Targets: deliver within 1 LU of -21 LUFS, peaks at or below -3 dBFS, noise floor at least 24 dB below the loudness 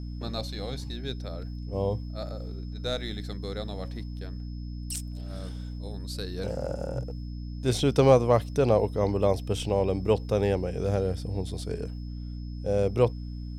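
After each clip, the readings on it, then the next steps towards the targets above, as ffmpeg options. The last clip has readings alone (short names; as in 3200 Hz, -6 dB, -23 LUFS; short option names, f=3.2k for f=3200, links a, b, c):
hum 60 Hz; harmonics up to 300 Hz; hum level -33 dBFS; steady tone 5200 Hz; tone level -57 dBFS; loudness -29.0 LUFS; peak -6.5 dBFS; loudness target -21.0 LUFS
-> -af "bandreject=f=60:t=h:w=6,bandreject=f=120:t=h:w=6,bandreject=f=180:t=h:w=6,bandreject=f=240:t=h:w=6,bandreject=f=300:t=h:w=6"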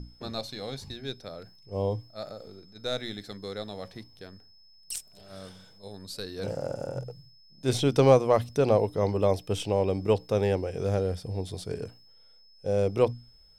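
hum none; steady tone 5200 Hz; tone level -57 dBFS
-> -af "bandreject=f=5.2k:w=30"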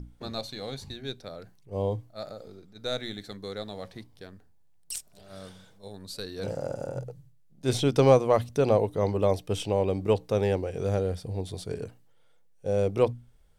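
steady tone none; loudness -28.5 LUFS; peak -6.5 dBFS; loudness target -21.0 LUFS
-> -af "volume=7.5dB,alimiter=limit=-3dB:level=0:latency=1"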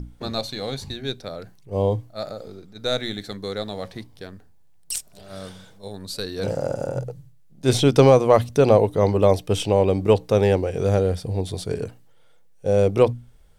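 loudness -21.5 LUFS; peak -3.0 dBFS; noise floor -50 dBFS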